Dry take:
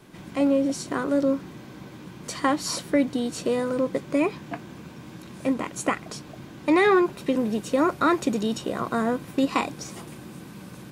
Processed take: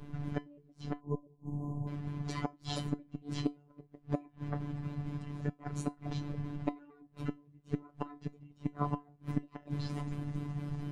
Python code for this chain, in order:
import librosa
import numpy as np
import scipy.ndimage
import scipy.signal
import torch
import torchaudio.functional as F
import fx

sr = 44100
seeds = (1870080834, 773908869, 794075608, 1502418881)

y = fx.pitch_trill(x, sr, semitones=-5.5, every_ms=115)
y = fx.riaa(y, sr, side='playback')
y = fx.gate_flip(y, sr, shuts_db=-12.0, range_db=-35)
y = fx.rider(y, sr, range_db=5, speed_s=0.5)
y = fx.comb_fb(y, sr, f0_hz=340.0, decay_s=0.18, harmonics='all', damping=0.0, mix_pct=80)
y = fx.spec_erase(y, sr, start_s=1.0, length_s=0.88, low_hz=1100.0, high_hz=6200.0)
y = fx.robotise(y, sr, hz=145.0)
y = y * librosa.db_to_amplitude(8.0)